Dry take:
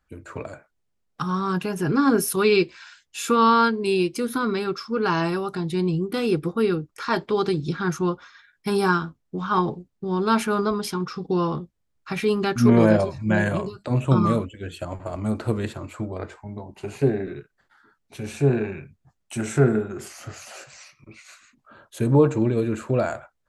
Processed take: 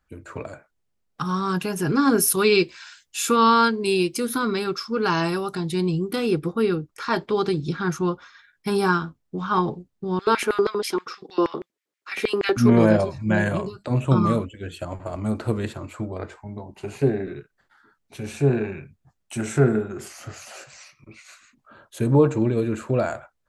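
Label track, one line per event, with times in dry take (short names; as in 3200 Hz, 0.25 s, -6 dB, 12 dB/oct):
1.250000	6.160000	high shelf 4100 Hz +7.5 dB
10.190000	12.570000	LFO high-pass square 6.3 Hz 370–2000 Hz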